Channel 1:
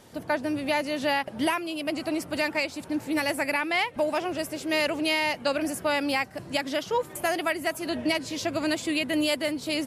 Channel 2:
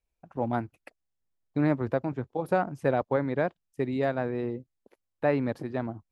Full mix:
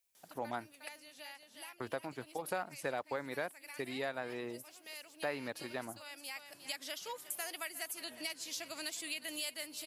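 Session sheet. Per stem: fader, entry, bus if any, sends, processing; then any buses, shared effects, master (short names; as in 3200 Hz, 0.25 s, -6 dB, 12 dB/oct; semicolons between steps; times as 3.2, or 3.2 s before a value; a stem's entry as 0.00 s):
-15.0 dB, 0.15 s, no send, echo send -17.5 dB, auto duck -13 dB, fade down 0.85 s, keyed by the second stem
-2.0 dB, 0.00 s, muted 1–1.8, no send, no echo send, dry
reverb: off
echo: echo 0.359 s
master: tilt +4.5 dB/oct; compressor 2:1, threshold -39 dBFS, peak gain reduction 8.5 dB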